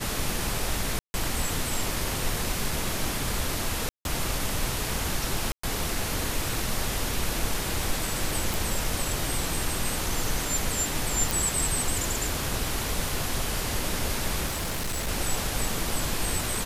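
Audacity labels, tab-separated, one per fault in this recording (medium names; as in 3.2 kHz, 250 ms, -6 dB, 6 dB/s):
0.990000	1.140000	dropout 150 ms
3.890000	4.050000	dropout 161 ms
5.520000	5.630000	dropout 114 ms
8.540000	8.540000	pop
11.310000	11.310000	pop
14.460000	15.090000	clipped -26 dBFS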